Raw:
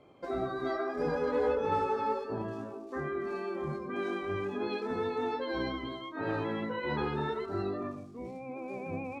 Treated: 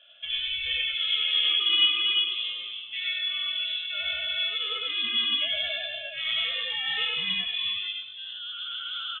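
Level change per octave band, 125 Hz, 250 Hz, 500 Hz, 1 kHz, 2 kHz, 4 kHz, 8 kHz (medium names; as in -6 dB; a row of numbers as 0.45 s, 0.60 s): under -15 dB, -17.0 dB, -16.0 dB, -9.5 dB, +10.5 dB, +27.5 dB, no reading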